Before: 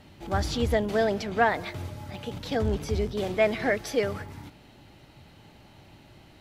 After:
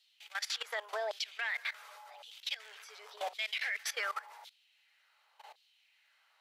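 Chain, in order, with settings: LFO high-pass saw down 0.9 Hz 720–3900 Hz; brick-wall FIR high-pass 400 Hz; level quantiser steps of 18 dB; gain +1 dB

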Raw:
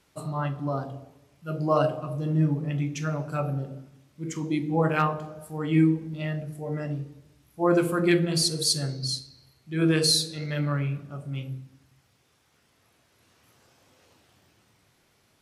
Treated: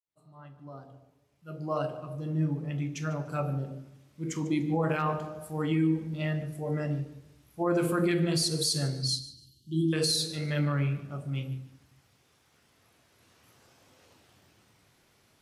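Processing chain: opening faded in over 4.63 s; limiter -18.5 dBFS, peak gain reduction 8 dB; 9.09–9.93 brick-wall FIR band-stop 380–2800 Hz; thinning echo 0.148 s, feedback 26%, high-pass 170 Hz, level -17.5 dB

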